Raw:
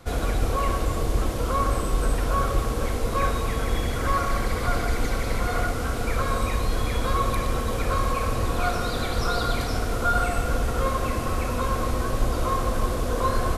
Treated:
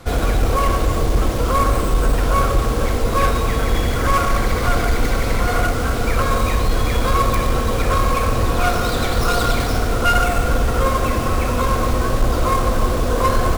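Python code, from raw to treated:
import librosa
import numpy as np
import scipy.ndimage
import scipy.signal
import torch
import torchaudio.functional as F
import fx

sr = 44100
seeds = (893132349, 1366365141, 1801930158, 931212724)

p1 = fx.tracing_dist(x, sr, depth_ms=0.25)
p2 = fx.fold_sine(p1, sr, drive_db=4, ceiling_db=-9.5)
y = p1 + (p2 * 10.0 ** (-5.0 / 20.0))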